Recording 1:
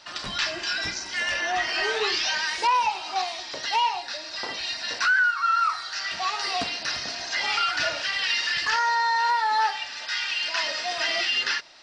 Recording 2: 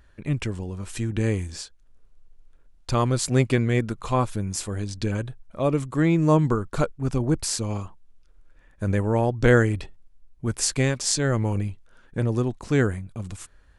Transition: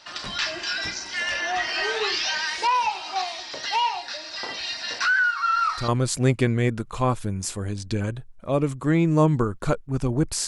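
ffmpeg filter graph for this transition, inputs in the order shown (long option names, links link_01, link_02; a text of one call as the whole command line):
ffmpeg -i cue0.wav -i cue1.wav -filter_complex "[1:a]asplit=2[link_01][link_02];[0:a]apad=whole_dur=10.47,atrim=end=10.47,atrim=end=5.882[link_03];[link_02]atrim=start=2.988:end=7.58[link_04];[link_01]atrim=start=2.56:end=2.99,asetpts=PTS-STARTPTS,volume=-6dB,afade=type=in:duration=0.004:curve=hsin,afade=type=out:start_time=0.426:duration=0.004:curve=hsin,adelay=240345S[link_05];[link_03][link_04]acrossfade=duration=0.004:curve1=hsin:curve2=hsin[link_06];[link_06][link_05]amix=inputs=2:normalize=0" out.wav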